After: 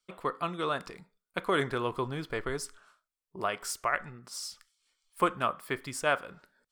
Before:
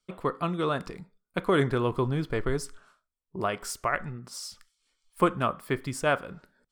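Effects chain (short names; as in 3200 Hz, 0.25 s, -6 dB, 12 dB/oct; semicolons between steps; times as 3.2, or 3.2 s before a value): low shelf 400 Hz -11 dB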